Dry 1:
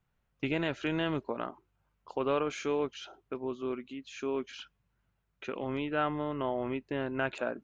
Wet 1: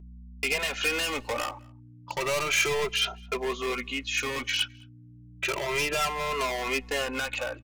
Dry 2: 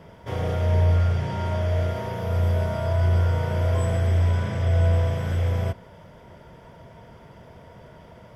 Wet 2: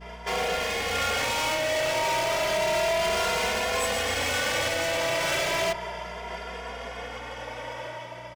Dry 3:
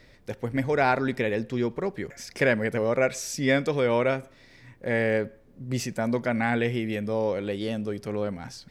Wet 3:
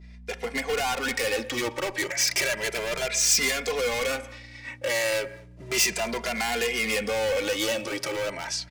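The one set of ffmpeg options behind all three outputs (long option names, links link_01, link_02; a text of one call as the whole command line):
ffmpeg -i in.wav -filter_complex "[0:a]lowpass=8200,agate=range=-33dB:threshold=-44dB:ratio=3:detection=peak,highpass=650,highshelf=frequency=4300:gain=-10.5,asplit=2[link_01][link_02];[link_02]acompressor=threshold=-38dB:ratio=6,volume=0.5dB[link_03];[link_01][link_03]amix=inputs=2:normalize=0,alimiter=limit=-22.5dB:level=0:latency=1:release=288,dynaudnorm=framelen=120:gausssize=9:maxgain=6dB,volume=31.5dB,asoftclip=hard,volume=-31.5dB,aeval=exprs='val(0)+0.00282*(sin(2*PI*60*n/s)+sin(2*PI*2*60*n/s)/2+sin(2*PI*3*60*n/s)/3+sin(2*PI*4*60*n/s)/4+sin(2*PI*5*60*n/s)/5)':channel_layout=same,aexciter=amount=2.2:drive=5:freq=2100,asplit=2[link_04][link_05];[link_05]adelay=209.9,volume=-27dB,highshelf=frequency=4000:gain=-4.72[link_06];[link_04][link_06]amix=inputs=2:normalize=0,asplit=2[link_07][link_08];[link_08]adelay=2.5,afreqshift=0.33[link_09];[link_07][link_09]amix=inputs=2:normalize=1,volume=8.5dB" out.wav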